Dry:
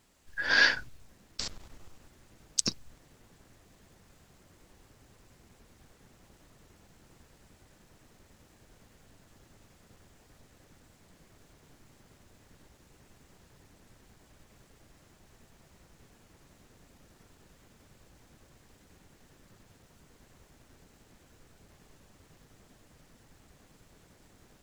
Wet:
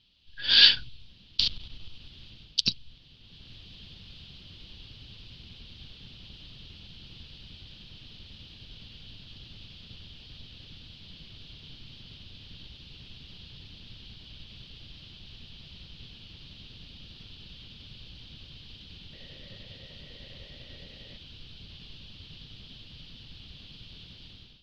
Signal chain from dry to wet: FFT filter 120 Hz 0 dB, 210 Hz -4 dB, 330 Hz -10 dB, 720 Hz -15 dB, 2 kHz -10 dB, 3.1 kHz +14 dB, 4.6 kHz +7 dB, 7.3 kHz -27 dB; level rider gain up to 13 dB; 19.13–21.17 s: small resonant body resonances 550/1900 Hz, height 16 dB, ringing for 25 ms; trim -1 dB

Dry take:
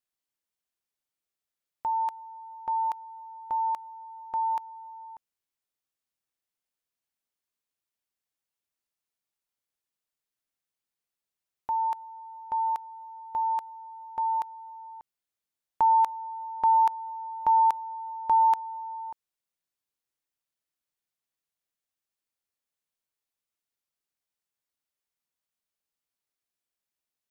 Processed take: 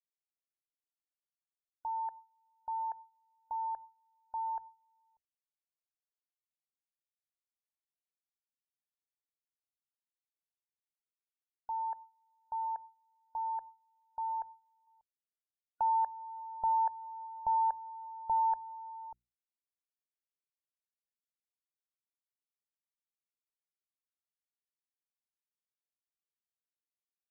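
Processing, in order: gate with hold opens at -34 dBFS; bass shelf 140 Hz +9.5 dB; hum notches 60/120/180/240/300/360 Hz; loudest bins only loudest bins 64; static phaser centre 1.2 kHz, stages 6; 14.87–17.27 s: tape noise reduction on one side only encoder only; trim -6.5 dB

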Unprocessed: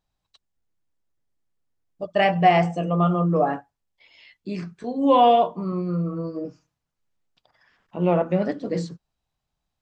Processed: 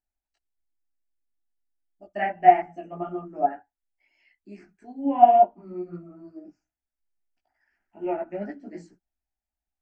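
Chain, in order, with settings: static phaser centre 740 Hz, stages 8; low-pass that closes with the level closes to 2 kHz, closed at -17 dBFS; chorus voices 6, 1.4 Hz, delay 17 ms, depth 3 ms; upward expansion 1.5:1, over -35 dBFS; trim +4 dB

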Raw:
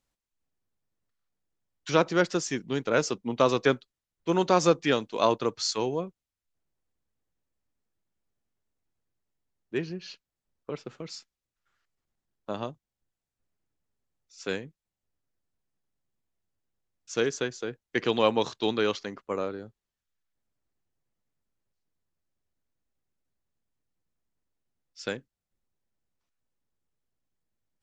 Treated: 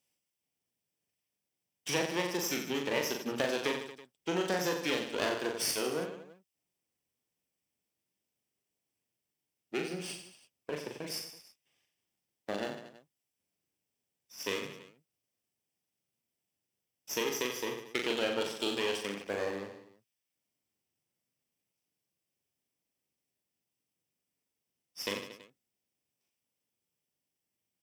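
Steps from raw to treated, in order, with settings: comb filter that takes the minimum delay 0.37 ms; high-pass 110 Hz 12 dB/octave; tilt EQ +1.5 dB/octave; compression 3:1, threshold -32 dBFS, peak gain reduction 12 dB; on a send: reverse bouncing-ball echo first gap 40 ms, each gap 1.25×, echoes 5

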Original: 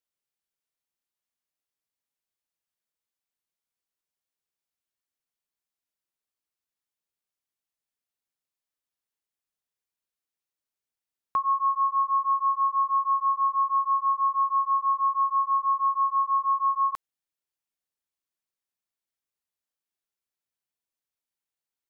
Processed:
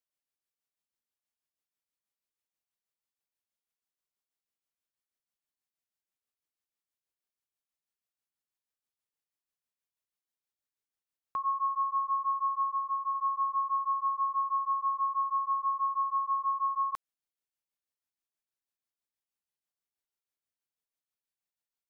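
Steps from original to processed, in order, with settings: 12.69–13.15 s: compression 1.5:1, threshold -28 dBFS, peak gain reduction 3 dB; tremolo 6.2 Hz, depth 51%; trim -2.5 dB

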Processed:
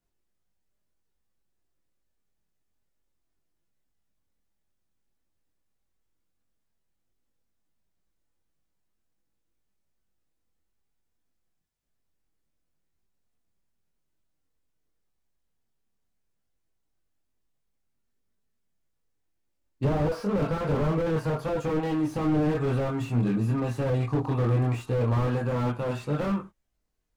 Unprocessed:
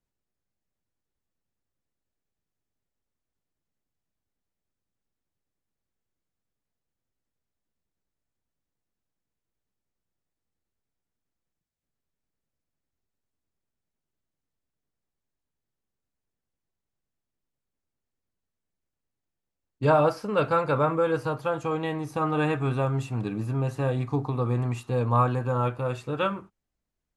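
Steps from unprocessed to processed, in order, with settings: chorus voices 6, 0.1 Hz, delay 23 ms, depth 3.3 ms; slew-rate limiter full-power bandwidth 13 Hz; trim +6.5 dB

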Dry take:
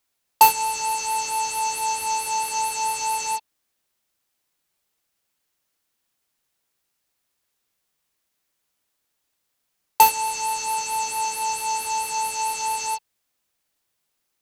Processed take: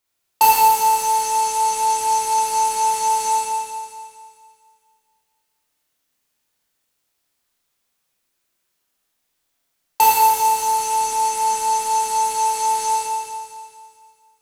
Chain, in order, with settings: Schroeder reverb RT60 2.1 s, combs from 25 ms, DRR -5 dB; trim -3 dB

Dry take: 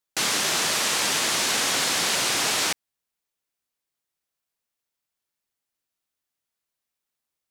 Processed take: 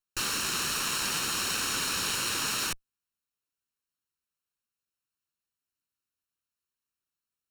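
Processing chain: comb filter that takes the minimum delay 0.72 ms; peaking EQ 78 Hz +2.5 dB 0.62 oct; trim -5 dB

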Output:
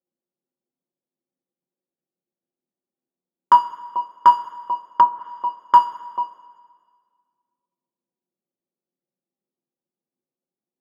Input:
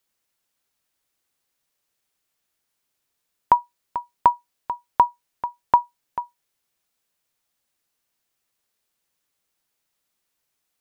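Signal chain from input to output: median filter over 15 samples; high-pass 200 Hz 24 dB/octave; level-controlled noise filter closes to 330 Hz, open at -20.5 dBFS; two-slope reverb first 0.23 s, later 1.8 s, from -20 dB, DRR -1 dB; 4.85–5.60 s: low-pass that closes with the level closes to 1 kHz, closed at -11.5 dBFS

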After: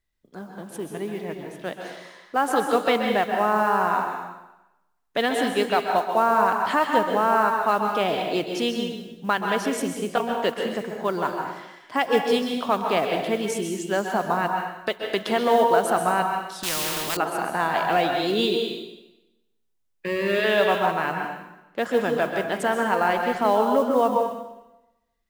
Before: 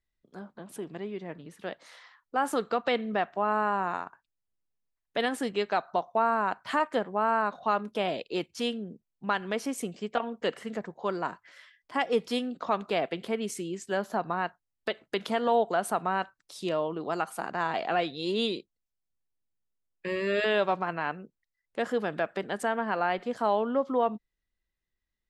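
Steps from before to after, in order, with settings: 20.23–21.86 s: Chebyshev low-pass 4.5 kHz; modulation noise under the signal 28 dB; plate-style reverb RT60 0.96 s, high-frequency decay 0.95×, pre-delay 115 ms, DRR 2.5 dB; 16.63–17.17 s: spectrum-flattening compressor 4:1; trim +5 dB

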